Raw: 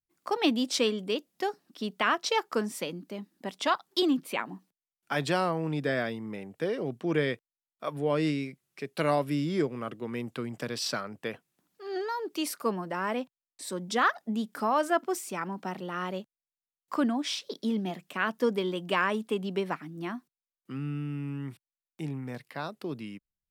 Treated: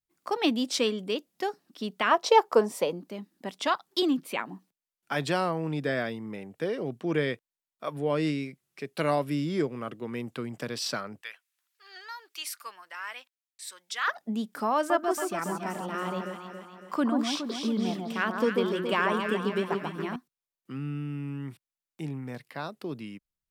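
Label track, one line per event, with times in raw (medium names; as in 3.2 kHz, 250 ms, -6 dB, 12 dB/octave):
2.110000	3.080000	high-order bell 660 Hz +9.5 dB
11.210000	14.080000	Chebyshev high-pass 1.8 kHz
14.760000	20.160000	echo whose repeats swap between lows and highs 139 ms, split 1.3 kHz, feedback 71%, level -3 dB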